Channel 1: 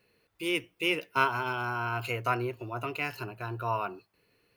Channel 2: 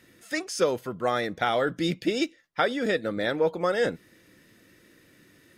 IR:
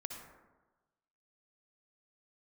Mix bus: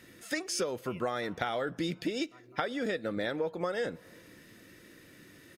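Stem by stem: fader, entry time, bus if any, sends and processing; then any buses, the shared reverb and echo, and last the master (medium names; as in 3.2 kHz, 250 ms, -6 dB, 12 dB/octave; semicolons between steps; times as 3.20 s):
-15.5 dB, 0.05 s, no send, echo send -18 dB, expander on every frequency bin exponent 1.5; auto duck -9 dB, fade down 1.85 s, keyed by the second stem
+2.0 dB, 0.00 s, send -23.5 dB, no echo send, none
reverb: on, RT60 1.2 s, pre-delay 53 ms
echo: feedback delay 204 ms, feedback 40%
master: compression 6:1, threshold -30 dBFS, peak gain reduction 14 dB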